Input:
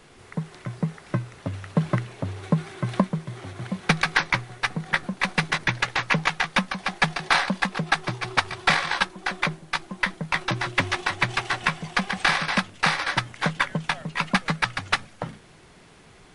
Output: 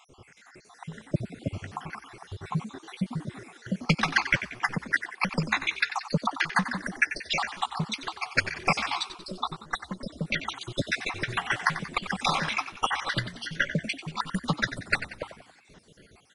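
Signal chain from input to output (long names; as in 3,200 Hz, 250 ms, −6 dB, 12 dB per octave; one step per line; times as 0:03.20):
time-frequency cells dropped at random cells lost 64%
on a send: echo with shifted repeats 92 ms, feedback 48%, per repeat +56 Hz, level −12 dB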